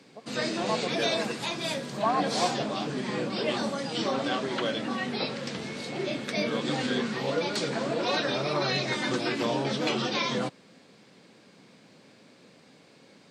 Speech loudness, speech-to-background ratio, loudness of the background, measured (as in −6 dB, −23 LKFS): −34.0 LKFS, −4.5 dB, −29.5 LKFS